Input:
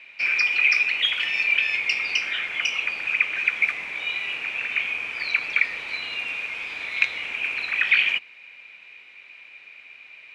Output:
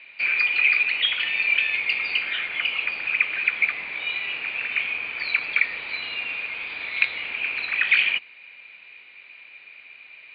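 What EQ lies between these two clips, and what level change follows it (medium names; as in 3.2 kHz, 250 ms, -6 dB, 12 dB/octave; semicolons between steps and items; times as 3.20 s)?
brick-wall FIR low-pass 4.8 kHz; 0.0 dB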